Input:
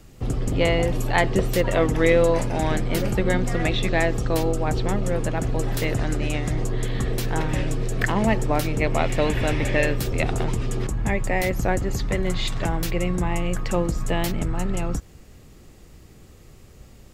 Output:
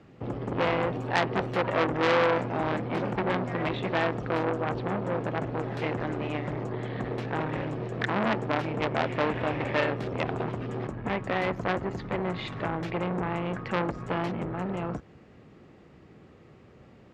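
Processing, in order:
band-pass filter 140–2,200 Hz
saturating transformer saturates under 2,300 Hz

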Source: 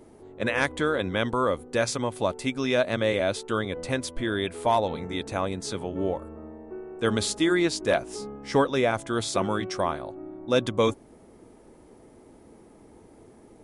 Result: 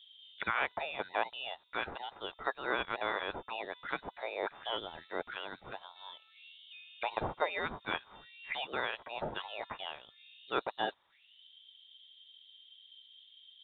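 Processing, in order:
envelope filter 730–3,000 Hz, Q 7.1, up, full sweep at −28.5 dBFS
voice inversion scrambler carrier 4,000 Hz
level +8.5 dB

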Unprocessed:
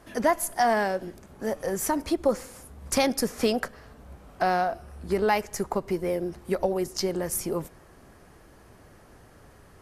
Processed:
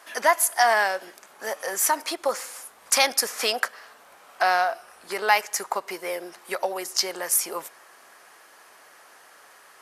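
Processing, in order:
high-pass filter 960 Hz 12 dB per octave
level +8.5 dB

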